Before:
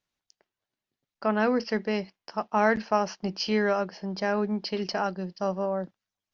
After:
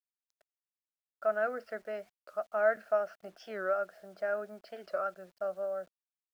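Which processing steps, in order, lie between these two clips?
pair of resonant band-passes 950 Hz, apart 1.1 octaves
bit reduction 11 bits
wow of a warped record 45 rpm, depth 160 cents

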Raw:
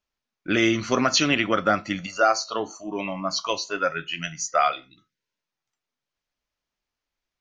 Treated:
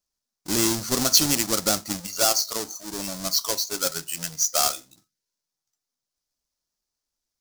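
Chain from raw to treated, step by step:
each half-wave held at its own peak
high shelf with overshoot 3,800 Hz +11.5 dB, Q 1.5
level −9 dB

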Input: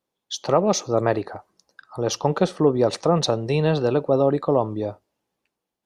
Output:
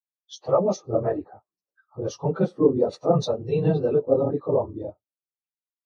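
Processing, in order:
random phases in long frames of 50 ms
0:00.76–0:02.03: low-pass filter 2,700 Hz 6 dB per octave
every bin expanded away from the loudest bin 1.5 to 1

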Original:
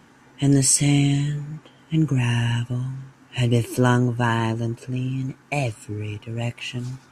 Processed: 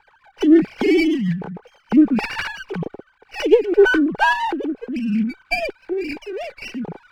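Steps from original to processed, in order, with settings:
three sine waves on the formant tracks
hollow resonant body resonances 430/830/1,500/2,300 Hz, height 12 dB, ringing for 25 ms
rotating-speaker cabinet horn 6.7 Hz, later 1.1 Hz, at 0:01.99
windowed peak hold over 5 samples

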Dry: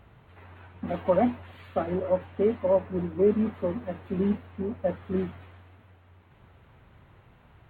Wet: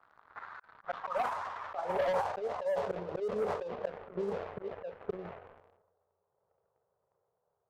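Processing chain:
running median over 15 samples
source passing by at 0:02.86, 5 m/s, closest 4.9 metres
brickwall limiter −22.5 dBFS, peak gain reduction 9.5 dB
band-pass filter sweep 1,400 Hz → 480 Hz, 0:00.72–0:03.23
downward compressor 4 to 1, threshold −40 dBFS, peak gain reduction 11 dB
volume swells 274 ms
drawn EQ curve 180 Hz 0 dB, 280 Hz −22 dB, 410 Hz +3 dB, 1,200 Hz +10 dB, 2,200 Hz +8 dB
leveller curve on the samples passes 3
low-pass that shuts in the quiet parts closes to 1,300 Hz, open at −33.5 dBFS
transient designer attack +8 dB, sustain +12 dB

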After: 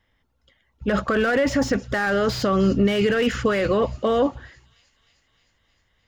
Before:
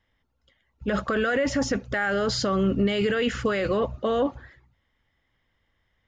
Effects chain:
delay with a high-pass on its return 308 ms, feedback 70%, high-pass 4,000 Hz, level −19 dB
slew-rate limiting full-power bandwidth 98 Hz
level +4 dB

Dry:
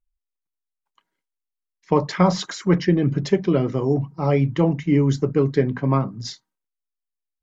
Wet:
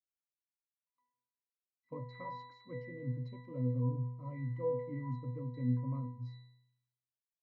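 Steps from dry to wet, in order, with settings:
resonances in every octave B, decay 0.78 s
level +1 dB

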